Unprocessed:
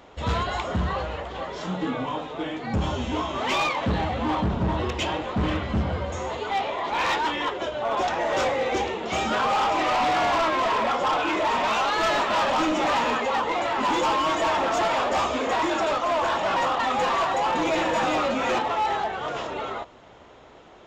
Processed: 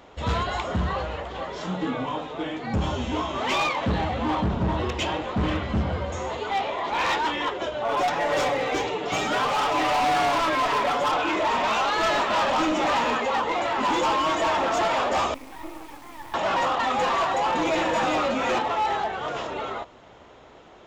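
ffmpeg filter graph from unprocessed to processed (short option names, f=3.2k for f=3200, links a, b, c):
-filter_complex "[0:a]asettb=1/sr,asplit=3[a][b][c];[a]atrim=end=7.884[d];[b]atrim=start=7.88:end=11.12,asetpts=PTS-STARTPTS,afade=t=in:d=0.004:c=qsin,afade=t=out:st=3.236:d=0.004:c=qsin,aecho=1:1:6.9:0.67,atrim=end_sample=142884,asoftclip=type=hard:threshold=-19.5dB[e];[c]atrim=start=11.116[f];[d][e]acrossfade=d=0.004:c1=hsin:c2=qsin[g];[g][f]acrossfade=d=0.004:c1=qsin:c2=hsin,asettb=1/sr,asplit=3[h][i][j];[h]atrim=end=15.344[k];[i]atrim=start=15.34:end=16.34,asetpts=PTS-STARTPTS,afade=t=in:d=0.004:c=qsin,afade=t=out:st=0.996:d=0.004:c=qsin,asplit=3[l][m][n];[l]bandpass=f=300:t=q:w=8,volume=0dB[o];[m]bandpass=f=870:t=q:w=8,volume=-6dB[p];[n]bandpass=f=2.24k:t=q:w=8,volume=-9dB[q];[o][p][q]amix=inputs=3:normalize=0,bandreject=f=50:t=h:w=6,bandreject=f=100:t=h:w=6,bandreject=f=150:t=h:w=6,bandreject=f=200:t=h:w=6,bandreject=f=250:t=h:w=6,bandreject=f=300:t=h:w=6,acrusher=bits=5:dc=4:mix=0:aa=0.000001[r];[j]atrim=start=16.336[s];[k][r]acrossfade=d=0.004:c1=hsin:c2=qsin[t];[t][s]acrossfade=d=0.004:c1=qsin:c2=hsin"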